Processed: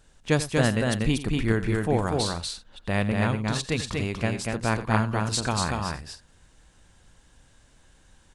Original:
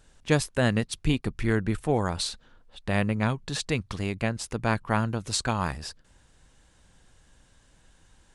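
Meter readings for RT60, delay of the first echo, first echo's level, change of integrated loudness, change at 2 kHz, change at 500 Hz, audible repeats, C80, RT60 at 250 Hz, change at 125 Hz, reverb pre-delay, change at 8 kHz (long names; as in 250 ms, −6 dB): no reverb audible, 88 ms, −14.5 dB, +1.5 dB, +2.0 dB, +2.0 dB, 3, no reverb audible, no reverb audible, +2.5 dB, no reverb audible, +2.0 dB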